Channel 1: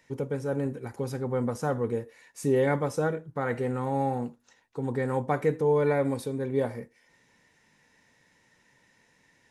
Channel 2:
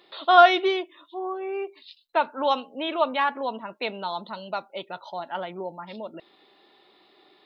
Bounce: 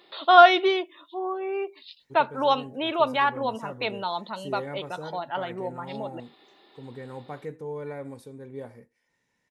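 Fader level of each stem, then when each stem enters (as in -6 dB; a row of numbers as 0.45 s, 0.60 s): -11.5 dB, +1.0 dB; 2.00 s, 0.00 s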